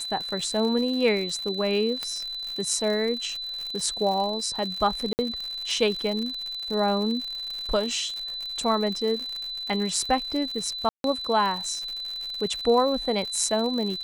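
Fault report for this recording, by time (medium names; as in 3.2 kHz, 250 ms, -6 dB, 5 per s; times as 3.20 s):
crackle 100 per s -31 dBFS
whine 4 kHz -31 dBFS
2.03 s: pop -15 dBFS
5.13–5.19 s: dropout 59 ms
10.89–11.04 s: dropout 152 ms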